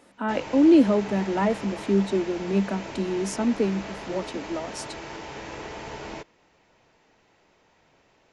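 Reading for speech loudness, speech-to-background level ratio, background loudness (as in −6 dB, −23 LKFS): −24.5 LKFS, 13.0 dB, −37.5 LKFS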